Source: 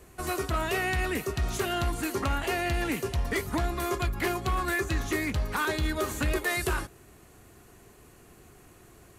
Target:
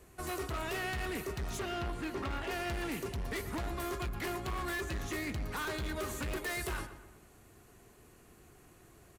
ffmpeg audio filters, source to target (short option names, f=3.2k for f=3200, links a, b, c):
-filter_complex "[0:a]asettb=1/sr,asplit=3[a][b][c];[a]atrim=end=1.594[d];[b]atrim=start=1.59:end=2.51,asetpts=PTS-STARTPTS,afade=t=in:d=0.004:c=qsin,afade=t=out:st=0.916:d=0.004:c=qsin,acrossover=split=4200[e][f];[f]acompressor=threshold=-55dB:ratio=4:attack=1:release=60[g];[e][g]amix=inputs=2:normalize=0[h];[c]atrim=start=2.506[i];[d][h]acrossfade=d=0.004:c1=hsin:c2=qsin[j];[j][i]acrossfade=d=0.004:c1=qsin:c2=hsin,volume=28.5dB,asoftclip=hard,volume=-28.5dB,asplit=2[k][l];[l]adelay=123,lowpass=f=2.8k:p=1,volume=-11.5dB,asplit=2[m][n];[n]adelay=123,lowpass=f=2.8k:p=1,volume=0.48,asplit=2[o][p];[p]adelay=123,lowpass=f=2.8k:p=1,volume=0.48,asplit=2[q][r];[r]adelay=123,lowpass=f=2.8k:p=1,volume=0.48,asplit=2[s][t];[t]adelay=123,lowpass=f=2.8k:p=1,volume=0.48[u];[k][m][o][q][s][u]amix=inputs=6:normalize=0,volume=-5.5dB"